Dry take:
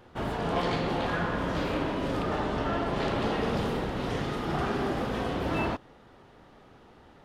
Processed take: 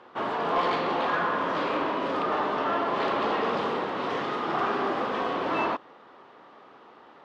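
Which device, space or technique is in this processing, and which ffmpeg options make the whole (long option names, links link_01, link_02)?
intercom: -af "highpass=320,lowpass=4100,equalizer=frequency=1100:width_type=o:width=0.42:gain=7.5,asoftclip=type=tanh:threshold=-19.5dB,volume=3.5dB"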